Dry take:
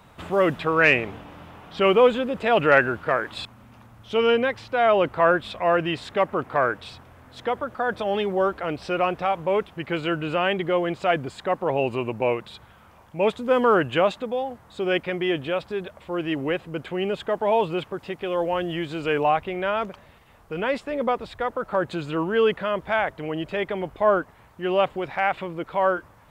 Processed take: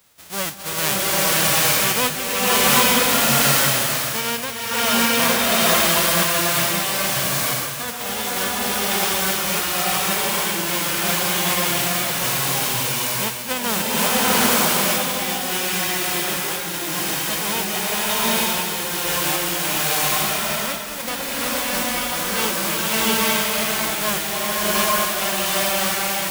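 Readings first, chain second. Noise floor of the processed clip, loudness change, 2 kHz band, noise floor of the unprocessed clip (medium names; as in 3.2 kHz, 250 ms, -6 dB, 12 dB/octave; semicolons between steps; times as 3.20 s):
-28 dBFS, +5.5 dB, +5.0 dB, -52 dBFS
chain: formants flattened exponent 0.1; swelling reverb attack 880 ms, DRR -9 dB; trim -6 dB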